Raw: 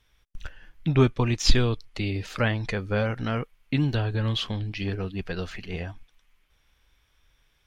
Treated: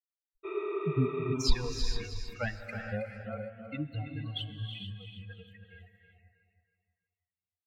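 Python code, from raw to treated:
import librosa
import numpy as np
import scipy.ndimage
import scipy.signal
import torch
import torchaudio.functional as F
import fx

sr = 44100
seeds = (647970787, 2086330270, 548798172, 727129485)

p1 = fx.bin_expand(x, sr, power=3.0)
p2 = p1 + fx.echo_feedback(p1, sr, ms=320, feedback_pct=36, wet_db=-8, dry=0)
p3 = fx.dereverb_blind(p2, sr, rt60_s=1.1)
p4 = fx.rev_gated(p3, sr, seeds[0], gate_ms=490, shape='rising', drr_db=5.0)
p5 = fx.spec_repair(p4, sr, seeds[1], start_s=0.47, length_s=0.83, low_hz=320.0, high_hz=7400.0, source='after')
y = p5 * 10.0 ** (-5.0 / 20.0)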